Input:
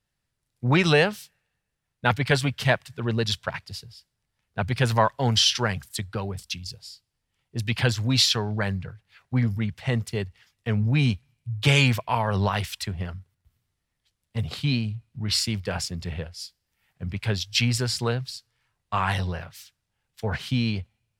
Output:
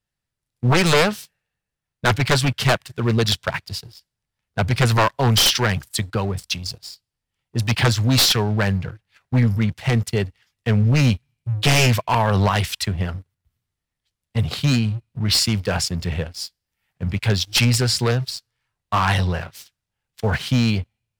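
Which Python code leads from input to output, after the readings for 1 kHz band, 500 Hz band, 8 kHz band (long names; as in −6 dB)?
+5.0 dB, +4.5 dB, +7.0 dB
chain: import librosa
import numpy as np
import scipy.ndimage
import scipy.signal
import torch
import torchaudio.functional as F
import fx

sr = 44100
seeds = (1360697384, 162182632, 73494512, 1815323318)

y = np.minimum(x, 2.0 * 10.0 ** (-18.5 / 20.0) - x)
y = fx.leveller(y, sr, passes=2)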